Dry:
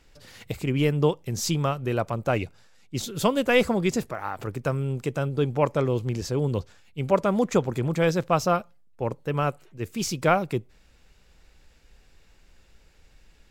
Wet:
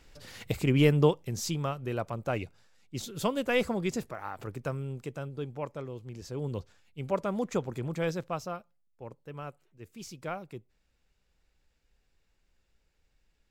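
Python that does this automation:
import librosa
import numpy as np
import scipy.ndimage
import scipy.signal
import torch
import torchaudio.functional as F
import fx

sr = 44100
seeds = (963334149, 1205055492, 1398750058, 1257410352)

y = fx.gain(x, sr, db=fx.line((0.93, 0.5), (1.49, -7.0), (4.6, -7.0), (6.01, -16.5), (6.48, -8.5), (8.1, -8.5), (8.59, -16.0)))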